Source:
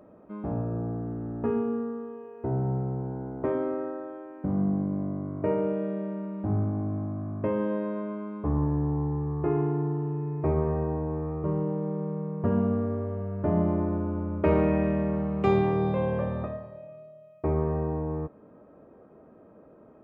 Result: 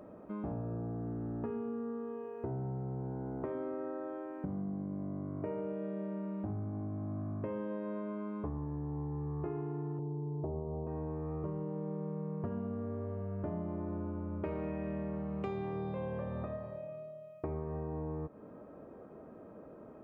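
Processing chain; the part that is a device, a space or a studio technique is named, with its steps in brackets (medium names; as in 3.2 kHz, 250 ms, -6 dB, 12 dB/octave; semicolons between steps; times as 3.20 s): 9.99–10.87 s: steep low-pass 950 Hz 36 dB/octave; serial compression, peaks first (compression 4:1, threshold -34 dBFS, peak gain reduction 13.5 dB; compression 1.5:1, threshold -43 dBFS, peak gain reduction 5 dB); trim +1.5 dB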